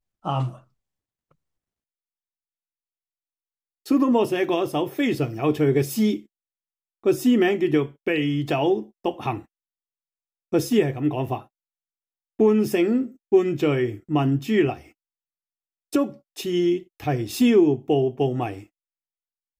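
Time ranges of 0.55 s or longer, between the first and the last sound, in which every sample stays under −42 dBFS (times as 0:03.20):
0:00.58–0:03.86
0:06.22–0:07.04
0:09.42–0:10.52
0:11.44–0:12.39
0:14.88–0:15.93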